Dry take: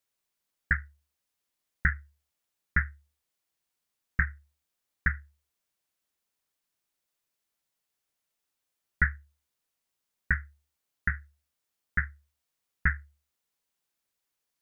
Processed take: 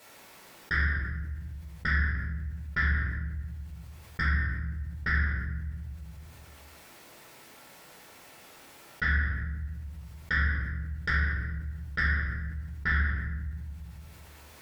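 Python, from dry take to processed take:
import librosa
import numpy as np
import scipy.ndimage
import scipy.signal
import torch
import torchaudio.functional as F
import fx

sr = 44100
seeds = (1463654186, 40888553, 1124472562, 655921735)

y = fx.high_shelf(x, sr, hz=2400.0, db=-11.5)
y = fx.level_steps(y, sr, step_db=20)
y = fx.highpass(y, sr, hz=190.0, slope=6)
y = fx.fold_sine(y, sr, drive_db=5, ceiling_db=-29.5)
y = fx.room_shoebox(y, sr, seeds[0], volume_m3=320.0, walls='mixed', distance_m=4.5)
y = fx.env_flatten(y, sr, amount_pct=50)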